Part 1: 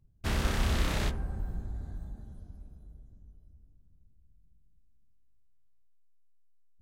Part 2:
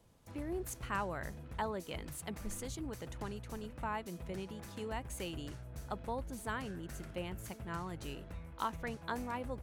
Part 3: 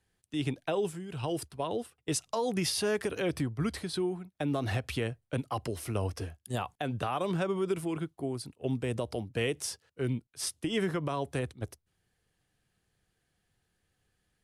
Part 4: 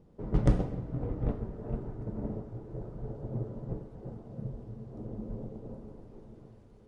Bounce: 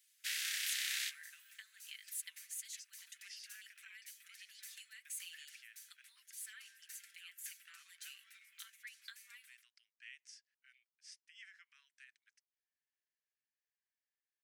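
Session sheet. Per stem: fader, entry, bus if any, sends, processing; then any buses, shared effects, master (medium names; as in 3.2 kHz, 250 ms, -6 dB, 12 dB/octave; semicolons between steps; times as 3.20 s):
-2.0 dB, 0.00 s, no send, none
-1.5 dB, 0.00 s, no send, compression, threshold -42 dBFS, peak gain reduction 11 dB; comb 5.1 ms, depth 59%
-13.0 dB, 0.65 s, no send, low-pass 5.5 kHz 24 dB/octave; peaking EQ 3.7 kHz -14 dB 0.87 oct
-9.5 dB, 0.00 s, no send, none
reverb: none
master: steep high-pass 1.7 kHz 48 dB/octave; treble shelf 5.7 kHz +8 dB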